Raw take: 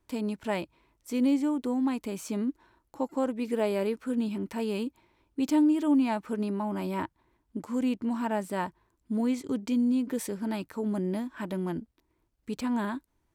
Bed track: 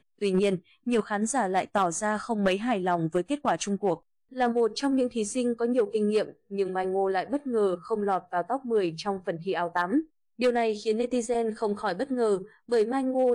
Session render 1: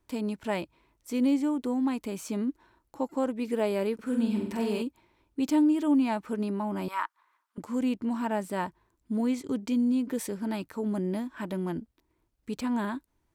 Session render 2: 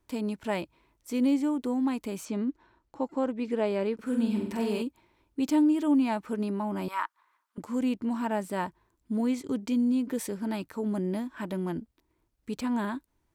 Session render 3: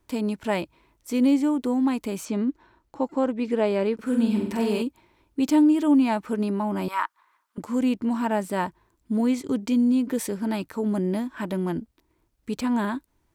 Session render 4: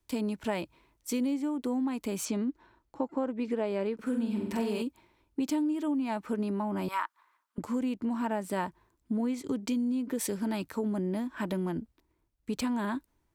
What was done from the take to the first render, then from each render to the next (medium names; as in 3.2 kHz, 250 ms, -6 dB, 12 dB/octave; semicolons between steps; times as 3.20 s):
3.94–4.82 s: flutter echo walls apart 8.2 m, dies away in 0.63 s; 6.88–7.58 s: resonant high-pass 1.2 kHz, resonance Q 3.6
2.25–3.98 s: distance through air 78 m
trim +5 dB
compression 6:1, threshold -28 dBFS, peak gain reduction 12.5 dB; three bands expanded up and down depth 40%